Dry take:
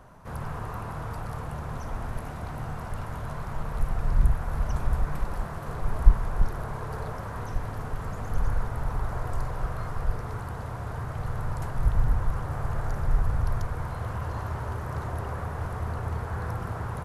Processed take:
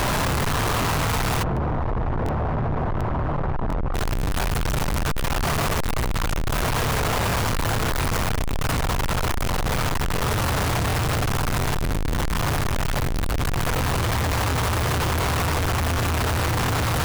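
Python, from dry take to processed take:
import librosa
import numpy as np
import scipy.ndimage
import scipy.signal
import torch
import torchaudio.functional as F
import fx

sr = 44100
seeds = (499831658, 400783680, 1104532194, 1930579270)

y = np.sign(x) * np.sqrt(np.mean(np.square(x)))
y = fx.lowpass(y, sr, hz=1000.0, slope=12, at=(1.42, 3.94), fade=0.02)
y = fx.buffer_crackle(y, sr, first_s=0.8, period_s=0.72, block=1024, kind='repeat')
y = F.gain(torch.from_numpy(y), 4.5).numpy()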